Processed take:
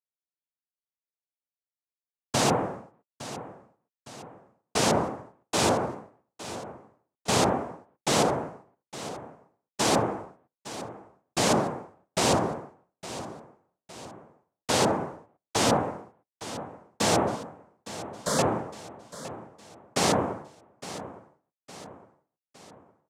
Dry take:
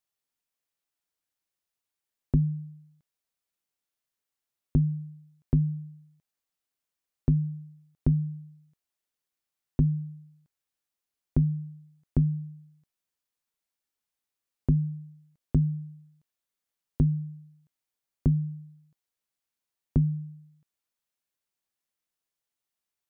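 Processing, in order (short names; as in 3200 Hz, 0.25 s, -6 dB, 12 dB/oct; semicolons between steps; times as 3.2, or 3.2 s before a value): Wiener smoothing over 41 samples; bell 150 Hz +8.5 dB 0.52 oct; sample leveller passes 2; wrapped overs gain 12.5 dB; noise vocoder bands 2; 17.36–18.39 fixed phaser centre 520 Hz, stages 8; feedback echo 0.861 s, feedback 48%, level -14.5 dB; gain -7 dB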